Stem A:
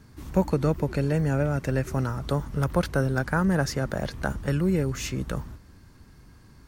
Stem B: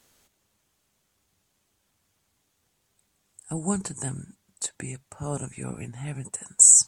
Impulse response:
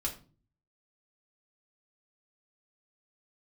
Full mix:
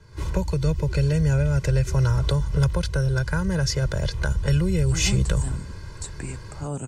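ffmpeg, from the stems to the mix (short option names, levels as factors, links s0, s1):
-filter_complex "[0:a]aecho=1:1:2:0.99,dynaudnorm=f=110:g=3:m=4.47,volume=0.75[s0];[1:a]acrossover=split=420[s1][s2];[s2]acompressor=threshold=0.0178:ratio=3[s3];[s1][s3]amix=inputs=2:normalize=0,adelay=1400,volume=1.26[s4];[s0][s4]amix=inputs=2:normalize=0,lowpass=7900,acrossover=split=160|3000[s5][s6][s7];[s6]acompressor=threshold=0.0398:ratio=10[s8];[s5][s8][s7]amix=inputs=3:normalize=0"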